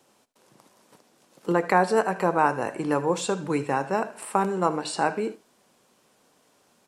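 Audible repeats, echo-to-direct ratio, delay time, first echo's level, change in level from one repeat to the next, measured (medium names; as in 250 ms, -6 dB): 1, -18.5 dB, 77 ms, -18.5 dB, no regular repeats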